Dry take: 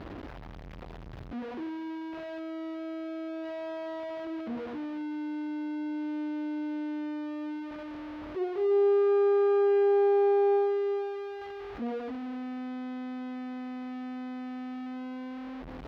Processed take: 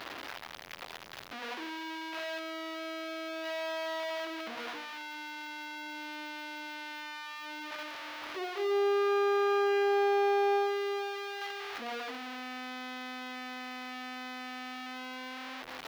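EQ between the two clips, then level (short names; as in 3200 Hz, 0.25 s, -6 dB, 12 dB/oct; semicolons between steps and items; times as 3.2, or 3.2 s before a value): tilt +4 dB/oct; low shelf 440 Hz -10.5 dB; notches 60/120/180/240/300/360/420/480/540/600 Hz; +6.0 dB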